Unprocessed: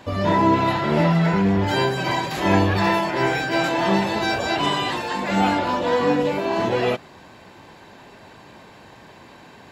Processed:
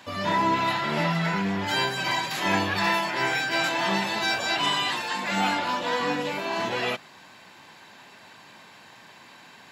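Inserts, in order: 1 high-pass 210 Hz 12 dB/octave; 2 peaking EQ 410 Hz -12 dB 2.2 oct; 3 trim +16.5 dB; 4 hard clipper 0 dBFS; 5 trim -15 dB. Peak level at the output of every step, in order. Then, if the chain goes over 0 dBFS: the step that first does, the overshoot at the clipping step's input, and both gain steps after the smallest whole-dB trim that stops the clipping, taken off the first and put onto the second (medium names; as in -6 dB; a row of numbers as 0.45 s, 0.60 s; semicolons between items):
-7.0 dBFS, -12.5 dBFS, +4.0 dBFS, 0.0 dBFS, -15.0 dBFS; step 3, 4.0 dB; step 3 +12.5 dB, step 5 -11 dB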